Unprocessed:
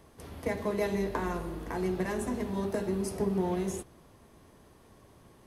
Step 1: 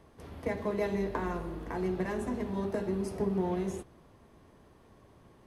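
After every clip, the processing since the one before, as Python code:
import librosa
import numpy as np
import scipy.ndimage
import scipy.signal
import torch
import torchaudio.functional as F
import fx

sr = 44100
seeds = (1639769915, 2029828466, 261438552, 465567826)

y = fx.high_shelf(x, sr, hz=5300.0, db=-10.5)
y = y * librosa.db_to_amplitude(-1.0)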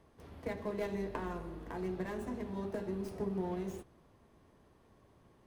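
y = fx.tracing_dist(x, sr, depth_ms=0.12)
y = y * librosa.db_to_amplitude(-6.0)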